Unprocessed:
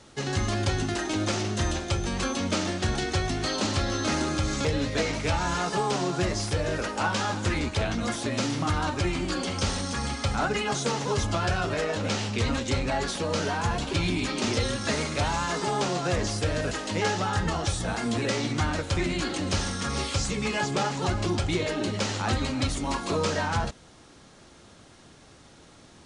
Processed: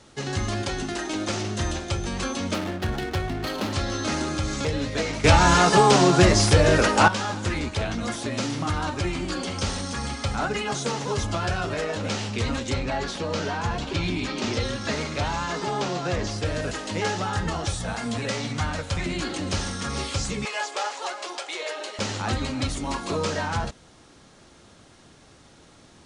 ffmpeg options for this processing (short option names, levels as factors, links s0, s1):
-filter_complex "[0:a]asettb=1/sr,asplit=3[s0][s1][s2];[s0]atrim=end=0.624[s3];[s1]atrim=start=0.62:end=1.29,asetpts=PTS-STARTPTS,afade=t=in:d=0.004:c=qsin,afade=t=out:st=0.666:d=0.004:c=qsin,equalizer=f=93:t=o:w=0.77:g=-11.5[s4];[s2]atrim=start=1.286[s5];[s3][s4]acrossfade=d=0.004:c1=hsin:c2=qsin[s6];[s6][s5]acrossfade=d=0.004:c1=qsin:c2=hsin,asettb=1/sr,asplit=3[s7][s8][s9];[s7]atrim=end=2.544[s10];[s8]atrim=start=2.54:end=3.73,asetpts=PTS-STARTPTS,afade=t=in:d=0.004:c=qsin,afade=t=out:st=1.186:d=0.004:c=qsin,adynamicsmooth=sensitivity=5.5:basefreq=920[s11];[s9]atrim=start=3.726[s12];[s10][s11]acrossfade=d=0.004:c1=hsin:c2=qsin[s13];[s13][s12]acrossfade=d=0.004:c1=qsin:c2=hsin,asettb=1/sr,asplit=3[s14][s15][s16];[s14]atrim=end=12.744[s17];[s15]atrim=start=12.74:end=16.45,asetpts=PTS-STARTPTS,afade=t=in:d=0.004:c=qsin,afade=t=out:st=3.706:d=0.004:c=qsin,lowpass=6400[s18];[s16]atrim=start=16.446[s19];[s17][s18]acrossfade=d=0.004:c1=hsin:c2=qsin[s20];[s20][s19]acrossfade=d=0.004:c1=qsin:c2=hsin,asettb=1/sr,asplit=3[s21][s22][s23];[s21]atrim=end=17.754[s24];[s22]atrim=start=17.75:end=19.06,asetpts=PTS-STARTPTS,afade=t=in:d=0.004:c=qsin,afade=t=out:st=1.306:d=0.004:c=qsin,equalizer=f=340:w=5.4:g=-14.5[s25];[s23]atrim=start=19.056[s26];[s24][s25]acrossfade=d=0.004:c1=hsin:c2=qsin[s27];[s27][s26]acrossfade=d=0.004:c1=qsin:c2=hsin,asettb=1/sr,asplit=3[s28][s29][s30];[s28]atrim=end=20.454[s31];[s29]atrim=start=20.45:end=21.99,asetpts=PTS-STARTPTS,afade=t=in:d=0.004:c=qsin,afade=t=out:st=1.536:d=0.004:c=qsin,highpass=f=520:w=0.5412,highpass=f=520:w=1.3066[s32];[s30]atrim=start=21.986[s33];[s31][s32]acrossfade=d=0.004:c1=hsin:c2=qsin[s34];[s34][s33]acrossfade=d=0.004:c1=qsin:c2=hsin,asplit=3[s35][s36][s37];[s35]atrim=end=5.242[s38];[s36]atrim=start=5.238:end=7.082,asetpts=PTS-STARTPTS,volume=3.35[s39];[s37]atrim=start=7.078[s40];[s38][s39]acrossfade=d=0.004:c1=hsin:c2=hsin[s41];[s41][s40]acrossfade=d=0.004:c1=hsin:c2=hsin"